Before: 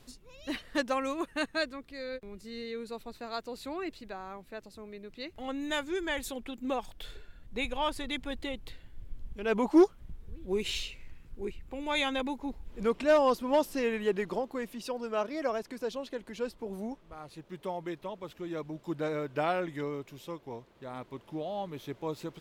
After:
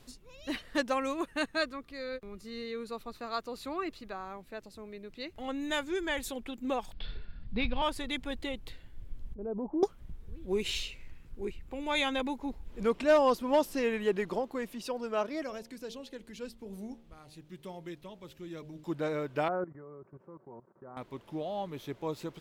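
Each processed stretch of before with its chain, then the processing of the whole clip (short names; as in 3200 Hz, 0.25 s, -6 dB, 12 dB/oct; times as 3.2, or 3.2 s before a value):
1.59–4.25 bell 1200 Hz +9.5 dB 0.2 oct + notch 7900 Hz, Q 17
6.93–7.82 CVSD 64 kbps + steep low-pass 4900 Hz 72 dB/oct + resonant low shelf 270 Hz +7.5 dB, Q 1.5
9.34–9.83 Bessel low-pass 550 Hz, order 4 + compressor 2.5:1, threshold -34 dBFS
15.43–18.84 bell 810 Hz -10.5 dB 2.5 oct + de-hum 76.39 Hz, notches 12
19.48–20.97 elliptic band-pass 110–1400 Hz + comb 5.3 ms, depth 42% + level quantiser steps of 16 dB
whole clip: dry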